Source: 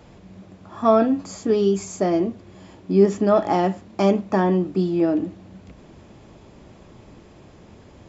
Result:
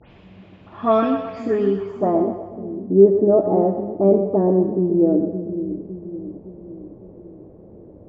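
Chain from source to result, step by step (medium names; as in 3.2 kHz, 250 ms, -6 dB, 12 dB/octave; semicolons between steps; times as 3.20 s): delay that grows with frequency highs late, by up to 130 ms; low-pass sweep 2.9 kHz -> 500 Hz, 1.22–2.62 s; two-band feedback delay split 360 Hz, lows 560 ms, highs 126 ms, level -8 dB; trim -1 dB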